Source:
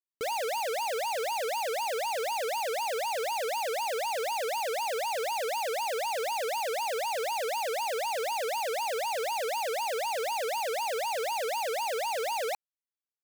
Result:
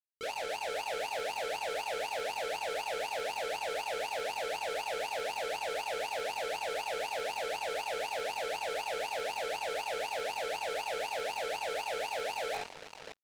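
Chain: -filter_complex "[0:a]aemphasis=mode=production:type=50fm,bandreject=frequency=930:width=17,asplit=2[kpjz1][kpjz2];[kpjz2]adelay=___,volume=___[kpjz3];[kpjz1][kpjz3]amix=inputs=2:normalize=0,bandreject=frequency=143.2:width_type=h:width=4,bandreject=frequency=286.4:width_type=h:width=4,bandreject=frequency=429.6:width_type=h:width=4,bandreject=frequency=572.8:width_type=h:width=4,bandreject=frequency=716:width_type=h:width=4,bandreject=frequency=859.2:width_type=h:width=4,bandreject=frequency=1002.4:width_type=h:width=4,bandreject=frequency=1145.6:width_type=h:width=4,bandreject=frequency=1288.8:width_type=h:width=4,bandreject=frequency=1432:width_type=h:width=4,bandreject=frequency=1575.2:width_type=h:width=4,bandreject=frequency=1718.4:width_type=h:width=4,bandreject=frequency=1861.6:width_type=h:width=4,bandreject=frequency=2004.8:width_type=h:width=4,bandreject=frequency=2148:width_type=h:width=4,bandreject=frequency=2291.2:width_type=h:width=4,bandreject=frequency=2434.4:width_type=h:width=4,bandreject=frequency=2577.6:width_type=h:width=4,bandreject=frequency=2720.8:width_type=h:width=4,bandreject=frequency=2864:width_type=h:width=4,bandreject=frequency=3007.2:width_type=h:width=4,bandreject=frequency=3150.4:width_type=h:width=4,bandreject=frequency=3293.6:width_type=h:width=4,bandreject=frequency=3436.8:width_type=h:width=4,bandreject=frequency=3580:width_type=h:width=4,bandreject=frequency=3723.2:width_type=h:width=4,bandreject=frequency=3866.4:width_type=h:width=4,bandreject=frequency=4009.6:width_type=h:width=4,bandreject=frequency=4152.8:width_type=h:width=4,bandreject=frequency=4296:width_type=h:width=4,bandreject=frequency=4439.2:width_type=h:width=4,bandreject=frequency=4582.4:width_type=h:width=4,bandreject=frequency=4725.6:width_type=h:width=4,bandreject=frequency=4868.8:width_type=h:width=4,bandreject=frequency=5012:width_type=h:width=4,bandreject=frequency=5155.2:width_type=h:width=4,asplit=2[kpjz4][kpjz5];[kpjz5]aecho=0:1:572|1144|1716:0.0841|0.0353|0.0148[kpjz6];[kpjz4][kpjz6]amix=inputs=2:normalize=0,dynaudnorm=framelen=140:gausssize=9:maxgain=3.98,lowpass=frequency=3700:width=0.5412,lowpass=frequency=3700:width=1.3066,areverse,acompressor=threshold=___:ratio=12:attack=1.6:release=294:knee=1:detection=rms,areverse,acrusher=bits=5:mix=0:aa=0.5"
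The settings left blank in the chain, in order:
21, 0.473, 0.0224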